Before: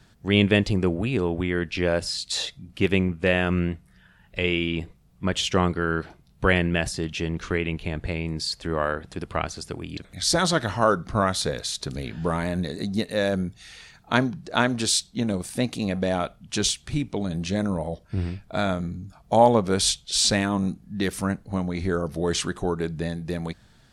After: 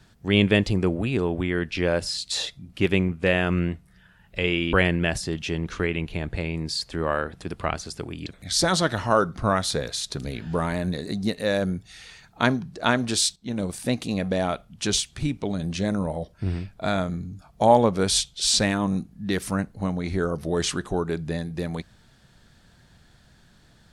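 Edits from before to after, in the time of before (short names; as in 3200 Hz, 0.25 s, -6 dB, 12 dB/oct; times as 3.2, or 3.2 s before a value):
4.73–6.44 cut
15.07–15.39 fade in, from -12.5 dB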